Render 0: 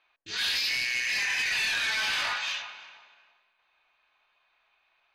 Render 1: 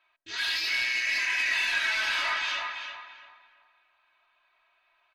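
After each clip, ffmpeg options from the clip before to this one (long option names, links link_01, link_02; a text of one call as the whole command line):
ffmpeg -i in.wav -filter_complex "[0:a]equalizer=frequency=1400:width_type=o:width=3:gain=7.5,aecho=1:1:3.1:0.76,asplit=2[link_01][link_02];[link_02]adelay=333,lowpass=frequency=2300:poles=1,volume=-3dB,asplit=2[link_03][link_04];[link_04]adelay=333,lowpass=frequency=2300:poles=1,volume=0.3,asplit=2[link_05][link_06];[link_06]adelay=333,lowpass=frequency=2300:poles=1,volume=0.3,asplit=2[link_07][link_08];[link_08]adelay=333,lowpass=frequency=2300:poles=1,volume=0.3[link_09];[link_03][link_05][link_07][link_09]amix=inputs=4:normalize=0[link_10];[link_01][link_10]amix=inputs=2:normalize=0,volume=-8dB" out.wav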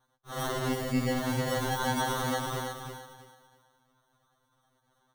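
ffmpeg -i in.wav -af "lowpass=10000,acrusher=samples=18:mix=1:aa=0.000001,afftfilt=real='re*2.45*eq(mod(b,6),0)':imag='im*2.45*eq(mod(b,6),0)':win_size=2048:overlap=0.75" out.wav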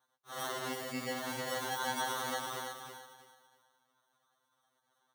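ffmpeg -i in.wav -af "highpass=frequency=690:poles=1,volume=-3dB" out.wav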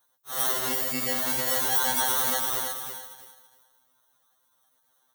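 ffmpeg -i in.wav -filter_complex "[0:a]aemphasis=mode=production:type=50fm,asplit=2[link_01][link_02];[link_02]aeval=exprs='sgn(val(0))*max(abs(val(0))-0.00224,0)':channel_layout=same,volume=-5dB[link_03];[link_01][link_03]amix=inputs=2:normalize=0,volume=2dB" out.wav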